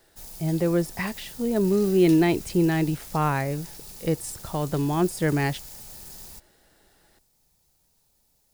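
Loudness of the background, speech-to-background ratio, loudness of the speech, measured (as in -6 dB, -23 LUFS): -40.0 LUFS, 15.5 dB, -24.5 LUFS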